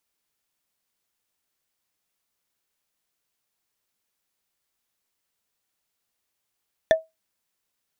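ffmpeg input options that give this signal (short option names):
-f lavfi -i "aevalsrc='0.335*pow(10,-3*t/0.19)*sin(2*PI*643*t)+0.168*pow(10,-3*t/0.056)*sin(2*PI*1772.8*t)+0.0841*pow(10,-3*t/0.025)*sin(2*PI*3474.8*t)+0.0422*pow(10,-3*t/0.014)*sin(2*PI*5743.9*t)+0.0211*pow(10,-3*t/0.008)*sin(2*PI*8577.6*t)':d=0.45:s=44100"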